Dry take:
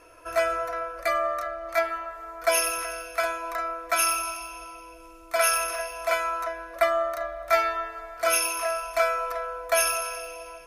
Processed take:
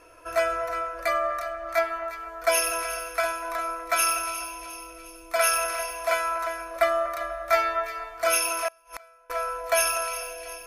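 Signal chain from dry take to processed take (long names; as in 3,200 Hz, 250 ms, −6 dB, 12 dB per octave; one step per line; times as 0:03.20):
echo with a time of its own for lows and highs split 1,900 Hz, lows 245 ms, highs 356 ms, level −12 dB
0:08.68–0:09.30: gate with flip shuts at −21 dBFS, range −29 dB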